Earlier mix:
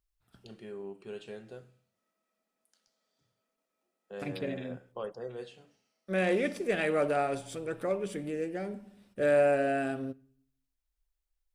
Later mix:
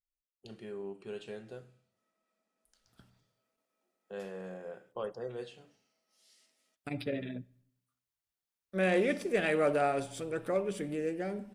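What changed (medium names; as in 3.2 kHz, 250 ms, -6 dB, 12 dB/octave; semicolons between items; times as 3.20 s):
first voice: send +6.0 dB; second voice: entry +2.65 s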